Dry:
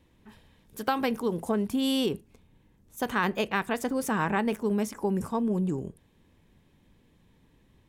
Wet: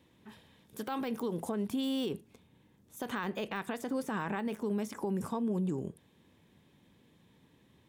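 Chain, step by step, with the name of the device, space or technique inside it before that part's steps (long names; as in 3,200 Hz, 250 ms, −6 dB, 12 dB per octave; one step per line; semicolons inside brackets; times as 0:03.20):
broadcast voice chain (high-pass filter 110 Hz 12 dB per octave; de-essing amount 85%; downward compressor 3 to 1, threshold −30 dBFS, peak gain reduction 6.5 dB; parametric band 3,500 Hz +4 dB 0.23 octaves; brickwall limiter −25.5 dBFS, peak gain reduction 8.5 dB)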